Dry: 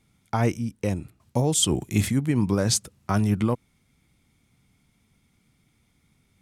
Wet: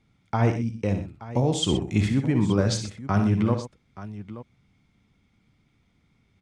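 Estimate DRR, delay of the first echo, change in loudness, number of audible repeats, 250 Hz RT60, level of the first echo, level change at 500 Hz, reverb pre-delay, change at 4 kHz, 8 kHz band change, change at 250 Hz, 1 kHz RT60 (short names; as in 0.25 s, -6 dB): none, 60 ms, 0.0 dB, 3, none, -9.5 dB, +1.0 dB, none, -2.0 dB, -10.0 dB, +1.0 dB, none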